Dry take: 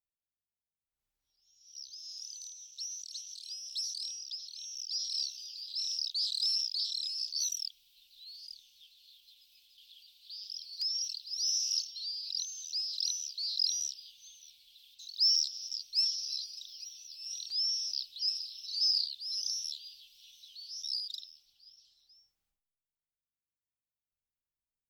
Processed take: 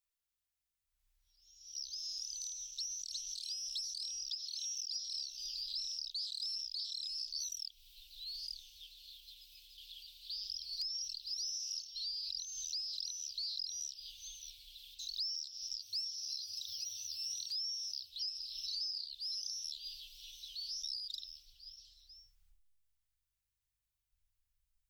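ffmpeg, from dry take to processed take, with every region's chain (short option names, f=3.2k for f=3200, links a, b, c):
-filter_complex "[0:a]asettb=1/sr,asplit=3[a][b][c];[a]atrim=end=4.304[d];[b]atrim=start=4.3:end=5,asetpts=PTS-STARTPTS,afade=t=in:d=0.004:c=qsin,afade=t=out:st=0.696:d=0.004:c=qsin,highpass=f=950:p=1,aecho=1:1:3:0.89,atrim=end_sample=30870[e];[c]atrim=start=4.996[f];[d][e]acrossfade=d=0.004:c1=hsin:c2=qsin[g];[g][f]acrossfade=d=0.004:c1=qsin:c2=hsin,asettb=1/sr,asplit=3[h][i][j];[h]atrim=end=15.824[k];[i]atrim=start=15.82:end=18.1,asetpts=PTS-STARTPTS,afade=t=in:d=0.004:c=qsin,afade=t=out:st=2.276:d=0.004:c=qsin,highshelf=f=9.8k:g=7.5,afreqshift=61[l];[j]atrim=start=18.096[m];[k][l]acrossfade=d=0.004:c1=hsin:c2=qsin[n];[n][m]acrossfade=d=0.004:c1=qsin:c2=hsin,equalizer=f=300:t=o:w=2.7:g=-14.5,acompressor=threshold=-43dB:ratio=10,asubboost=boost=10:cutoff=97,volume=5dB"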